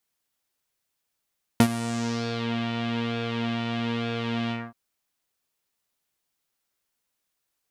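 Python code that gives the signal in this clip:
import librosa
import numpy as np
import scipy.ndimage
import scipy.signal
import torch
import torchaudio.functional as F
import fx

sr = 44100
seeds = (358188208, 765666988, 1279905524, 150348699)

y = fx.sub_patch_pwm(sr, seeds[0], note=58, wave2='saw', interval_st=0, detune_cents=16, level2_db=-9.0, sub_db=-5.5, noise_db=-30.0, kind='lowpass', cutoff_hz=1100.0, q=2.4, env_oct=3.5, env_decay_s=0.88, env_sustain_pct=45, attack_ms=2.2, decay_s=0.07, sustain_db=-14, release_s=0.22, note_s=2.91, lfo_hz=1.1, width_pct=40, width_swing_pct=17)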